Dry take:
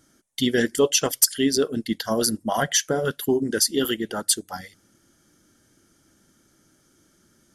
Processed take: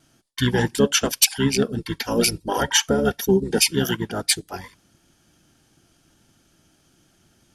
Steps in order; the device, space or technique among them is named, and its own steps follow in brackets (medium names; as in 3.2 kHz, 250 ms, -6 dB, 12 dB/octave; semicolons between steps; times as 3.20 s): 1.78–3.73 s: comb 2.2 ms, depth 76%; octave pedal (harmony voices -12 st -2 dB); gate with hold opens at -55 dBFS; trim -1 dB